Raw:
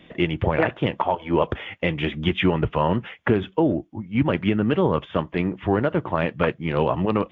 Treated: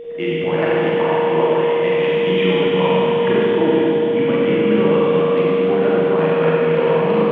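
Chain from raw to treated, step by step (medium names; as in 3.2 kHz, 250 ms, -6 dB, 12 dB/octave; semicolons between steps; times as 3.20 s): high-pass 160 Hz 24 dB/octave; feedback echo behind a high-pass 458 ms, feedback 70%, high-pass 1.4 kHz, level -7 dB; whistle 470 Hz -25 dBFS; Schroeder reverb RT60 3.6 s, combs from 33 ms, DRR -7.5 dB; trim -4.5 dB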